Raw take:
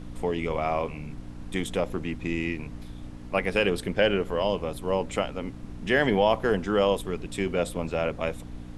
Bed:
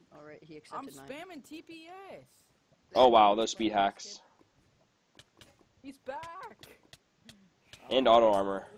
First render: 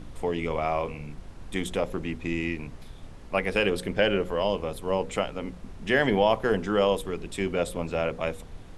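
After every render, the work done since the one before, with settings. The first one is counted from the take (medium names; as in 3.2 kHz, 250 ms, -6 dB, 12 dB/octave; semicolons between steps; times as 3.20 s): de-hum 60 Hz, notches 9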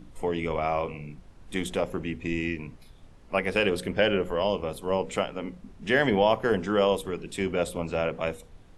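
noise print and reduce 8 dB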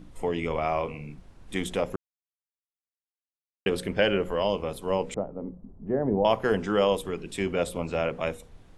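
1.96–3.66 s: mute; 5.14–6.25 s: Bessel low-pass 590 Hz, order 4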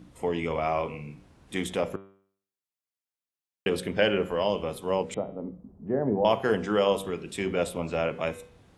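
high-pass 70 Hz; de-hum 97.49 Hz, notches 39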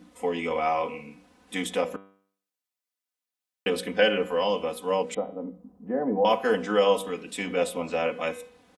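high-pass 310 Hz 6 dB/octave; comb 4 ms, depth 92%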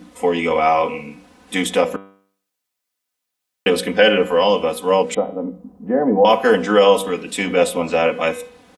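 trim +10 dB; peak limiter -2 dBFS, peak gain reduction 3 dB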